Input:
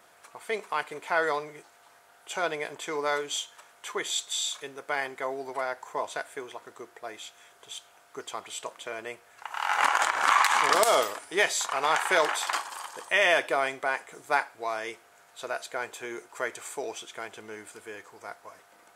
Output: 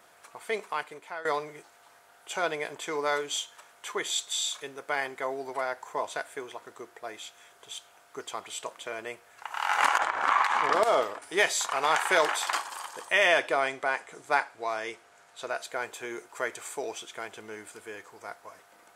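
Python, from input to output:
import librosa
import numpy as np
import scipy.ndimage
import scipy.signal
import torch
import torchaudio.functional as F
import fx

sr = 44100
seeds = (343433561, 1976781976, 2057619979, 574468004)

y = fx.lowpass(x, sr, hz=1500.0, slope=6, at=(9.98, 11.22))
y = fx.lowpass(y, sr, hz=9500.0, slope=12, at=(13.28, 15.61))
y = fx.edit(y, sr, fx.fade_out_to(start_s=0.58, length_s=0.67, floor_db=-18.0), tone=tone)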